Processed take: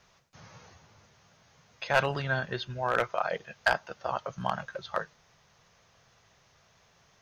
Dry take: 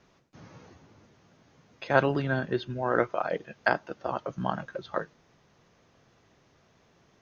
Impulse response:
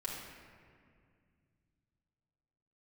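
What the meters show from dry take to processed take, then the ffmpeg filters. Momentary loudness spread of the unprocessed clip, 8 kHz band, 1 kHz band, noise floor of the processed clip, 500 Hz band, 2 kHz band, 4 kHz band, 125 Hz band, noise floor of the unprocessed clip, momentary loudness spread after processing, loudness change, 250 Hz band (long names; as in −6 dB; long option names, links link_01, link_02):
10 LU, can't be measured, 0.0 dB, −65 dBFS, −3.5 dB, +1.0 dB, +5.0 dB, −3.0 dB, −64 dBFS, 9 LU, −1.5 dB, −9.0 dB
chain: -af "bass=frequency=250:gain=-2,treble=frequency=4000:gain=4,volume=15dB,asoftclip=hard,volume=-15dB,equalizer=frequency=300:width_type=o:width=1.1:gain=-15,volume=2.5dB"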